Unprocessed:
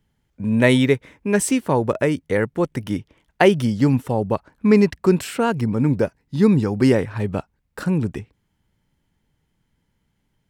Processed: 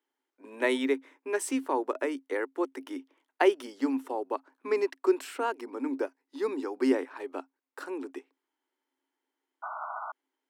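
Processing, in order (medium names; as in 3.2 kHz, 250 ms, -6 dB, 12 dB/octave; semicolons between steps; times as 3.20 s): painted sound noise, 9.62–10.12 s, 610–1500 Hz -30 dBFS; rippled Chebyshev high-pass 260 Hz, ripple 6 dB; trim -6 dB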